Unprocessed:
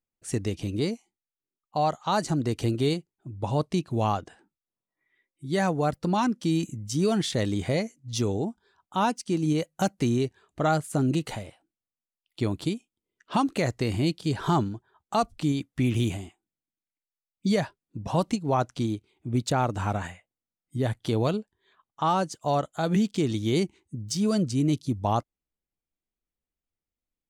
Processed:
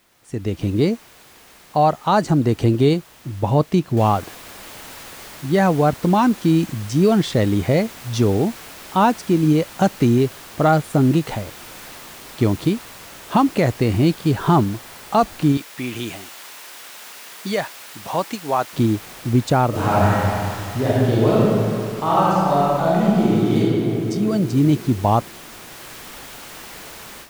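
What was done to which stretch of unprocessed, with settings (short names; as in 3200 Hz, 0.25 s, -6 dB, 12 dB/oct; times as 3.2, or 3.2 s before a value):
3.97 noise floor step -50 dB -41 dB
15.57–18.73 HPF 990 Hz 6 dB/oct
19.69–23.58 reverb throw, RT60 2.5 s, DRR -8.5 dB
whole clip: high shelf 3400 Hz -11.5 dB; AGC gain up to 14 dB; gain -3 dB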